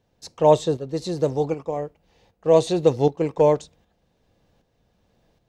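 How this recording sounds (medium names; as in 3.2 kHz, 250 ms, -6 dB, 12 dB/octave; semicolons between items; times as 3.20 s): tremolo saw up 1.3 Hz, depth 55%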